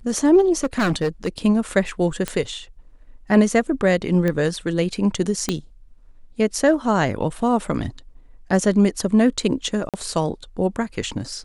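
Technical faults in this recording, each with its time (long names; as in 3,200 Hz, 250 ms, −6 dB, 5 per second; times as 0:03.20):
0:00.63–0:01.38: clipping −16 dBFS
0:02.28: click −9 dBFS
0:04.28: click −11 dBFS
0:05.49: click −7 dBFS
0:09.89–0:09.94: drop-out 47 ms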